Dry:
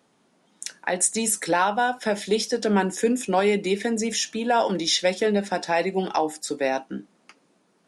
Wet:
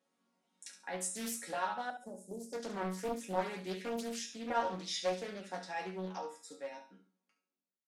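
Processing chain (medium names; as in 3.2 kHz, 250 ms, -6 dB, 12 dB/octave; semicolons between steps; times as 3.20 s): fade out at the end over 2.35 s; high-pass 110 Hz 6 dB/octave; chord resonator F#3 major, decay 0.33 s; 1.90–2.53 s: Chebyshev band-stop 590–7900 Hz, order 3; on a send: flutter echo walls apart 11.9 m, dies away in 0.39 s; on the sum: loudspeaker Doppler distortion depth 0.74 ms; trim +1 dB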